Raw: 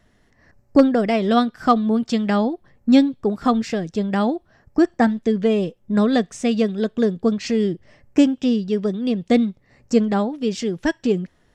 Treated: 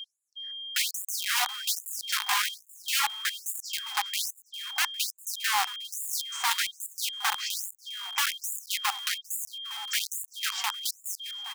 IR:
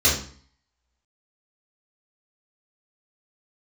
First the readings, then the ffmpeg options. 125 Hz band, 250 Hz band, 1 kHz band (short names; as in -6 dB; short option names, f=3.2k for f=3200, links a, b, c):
under -40 dB, under -40 dB, -7.5 dB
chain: -filter_complex "[0:a]adynamicequalizer=threshold=0.0112:dfrequency=2100:dqfactor=1.2:tfrequency=2100:tqfactor=1.2:attack=5:release=100:ratio=0.375:range=2.5:mode=cutabove:tftype=bell,aeval=exprs='val(0)+0.0178*(sin(2*PI*50*n/s)+sin(2*PI*2*50*n/s)/2+sin(2*PI*3*50*n/s)/3+sin(2*PI*4*50*n/s)/4+sin(2*PI*5*50*n/s)/5)':c=same,aeval=exprs='(mod(6.31*val(0)+1,2)-1)/6.31':c=same,aeval=exprs='val(0)+0.0224*sin(2*PI*3200*n/s)':c=same,asplit=2[a][b];[b]asplit=3[c][d][e];[c]adelay=403,afreqshift=140,volume=-17dB[f];[d]adelay=806,afreqshift=280,volume=-24.7dB[g];[e]adelay=1209,afreqshift=420,volume=-32.5dB[h];[f][g][h]amix=inputs=3:normalize=0[i];[a][i]amix=inputs=2:normalize=0,afftfilt=real='re*gte(b*sr/1024,690*pow(6900/690,0.5+0.5*sin(2*PI*1.2*pts/sr)))':imag='im*gte(b*sr/1024,690*pow(6900/690,0.5+0.5*sin(2*PI*1.2*pts/sr)))':win_size=1024:overlap=0.75,volume=-3dB"